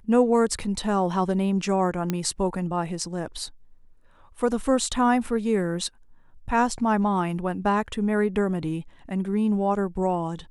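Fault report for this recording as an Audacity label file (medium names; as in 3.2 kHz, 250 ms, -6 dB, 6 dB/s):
2.100000	2.100000	pop -12 dBFS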